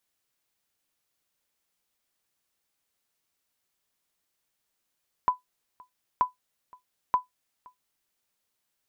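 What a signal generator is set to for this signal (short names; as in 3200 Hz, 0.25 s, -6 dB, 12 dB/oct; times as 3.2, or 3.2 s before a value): sonar ping 1000 Hz, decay 0.14 s, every 0.93 s, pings 3, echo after 0.52 s, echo -27 dB -13.5 dBFS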